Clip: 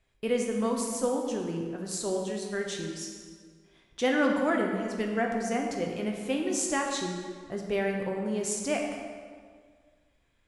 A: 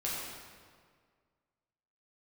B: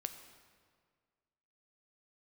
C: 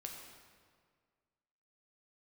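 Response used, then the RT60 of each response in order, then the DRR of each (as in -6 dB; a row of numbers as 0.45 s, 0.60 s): C; 1.9 s, 1.9 s, 1.9 s; -7.0 dB, 7.5 dB, 0.5 dB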